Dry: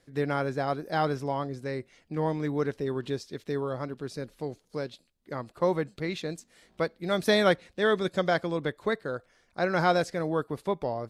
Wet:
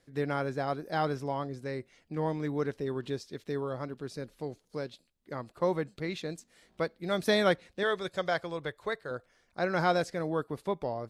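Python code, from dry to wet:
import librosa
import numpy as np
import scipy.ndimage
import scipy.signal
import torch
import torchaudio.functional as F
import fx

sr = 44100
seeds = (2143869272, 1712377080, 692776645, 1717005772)

y = fx.peak_eq(x, sr, hz=240.0, db=-11.0, octaves=1.1, at=(7.83, 9.11))
y = y * 10.0 ** (-3.0 / 20.0)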